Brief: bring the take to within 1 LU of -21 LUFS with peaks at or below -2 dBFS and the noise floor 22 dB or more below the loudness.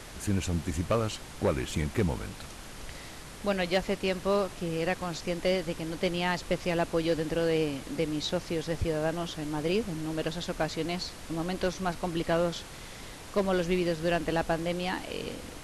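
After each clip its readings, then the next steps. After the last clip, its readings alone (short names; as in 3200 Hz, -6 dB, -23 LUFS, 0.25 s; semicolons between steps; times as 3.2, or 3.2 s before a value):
clipped 0.3%; flat tops at -19.0 dBFS; noise floor -45 dBFS; noise floor target -53 dBFS; loudness -30.5 LUFS; peak -19.0 dBFS; loudness target -21.0 LUFS
-> clip repair -19 dBFS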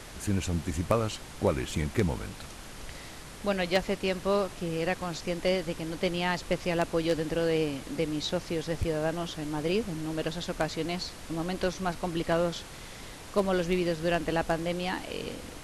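clipped 0.0%; noise floor -45 dBFS; noise floor target -53 dBFS
-> noise print and reduce 8 dB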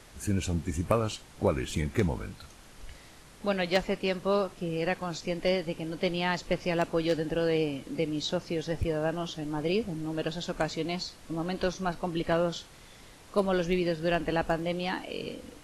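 noise floor -52 dBFS; noise floor target -53 dBFS
-> noise print and reduce 6 dB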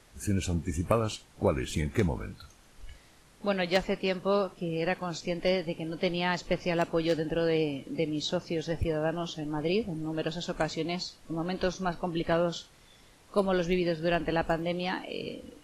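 noise floor -58 dBFS; loudness -30.5 LUFS; peak -10.0 dBFS; loudness target -21.0 LUFS
-> gain +9.5 dB; limiter -2 dBFS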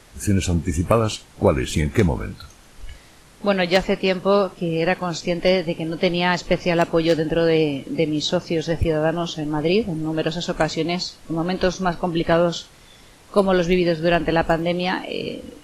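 loudness -21.0 LUFS; peak -2.0 dBFS; noise floor -49 dBFS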